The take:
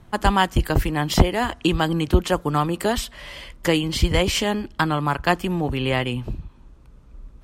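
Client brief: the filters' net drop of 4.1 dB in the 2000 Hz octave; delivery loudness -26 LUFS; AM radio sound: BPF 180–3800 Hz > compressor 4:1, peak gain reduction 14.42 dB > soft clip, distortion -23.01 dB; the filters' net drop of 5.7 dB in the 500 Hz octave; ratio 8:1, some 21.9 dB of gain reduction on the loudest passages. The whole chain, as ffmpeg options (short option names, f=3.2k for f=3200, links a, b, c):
-af "equalizer=f=500:t=o:g=-7.5,equalizer=f=2k:t=o:g=-4.5,acompressor=threshold=-34dB:ratio=8,highpass=180,lowpass=3.8k,acompressor=threshold=-48dB:ratio=4,asoftclip=threshold=-36dB,volume=25dB"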